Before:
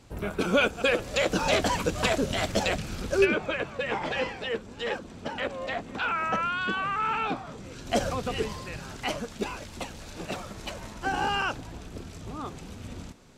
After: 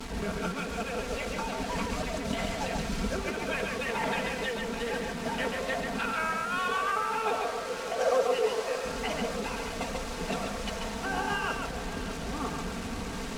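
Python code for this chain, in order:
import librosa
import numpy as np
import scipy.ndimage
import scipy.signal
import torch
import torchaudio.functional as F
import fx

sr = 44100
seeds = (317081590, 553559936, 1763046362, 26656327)

y = fx.delta_mod(x, sr, bps=64000, step_db=-36.5)
y = fx.peak_eq(y, sr, hz=3300.0, db=-2.5, octaves=0.77)
y = y + 0.76 * np.pad(y, (int(4.4 * sr / 1000.0), 0))[:len(y)]
y = fx.over_compress(y, sr, threshold_db=-29.0, ratio=-1.0)
y = fx.highpass_res(y, sr, hz=510.0, q=3.7, at=(6.58, 8.85))
y = fx.quant_dither(y, sr, seeds[0], bits=6, dither='none')
y = fx.air_absorb(y, sr, metres=53.0)
y = y + 10.0 ** (-4.0 / 20.0) * np.pad(y, (int(138 * sr / 1000.0), 0))[:len(y)]
y = fx.echo_crushed(y, sr, ms=604, feedback_pct=80, bits=10, wet_db=-14.0)
y = y * 10.0 ** (-3.5 / 20.0)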